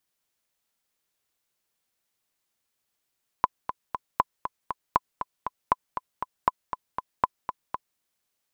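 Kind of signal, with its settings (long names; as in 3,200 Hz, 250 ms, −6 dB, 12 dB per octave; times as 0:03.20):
click track 237 BPM, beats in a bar 3, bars 6, 1,010 Hz, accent 9.5 dB −6 dBFS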